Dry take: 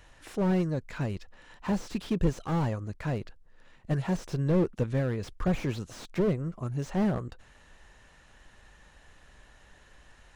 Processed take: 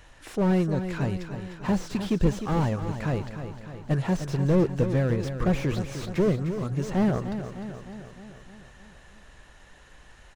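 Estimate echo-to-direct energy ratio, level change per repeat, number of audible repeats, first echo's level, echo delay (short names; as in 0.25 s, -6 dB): -7.5 dB, -4.5 dB, 6, -9.5 dB, 0.304 s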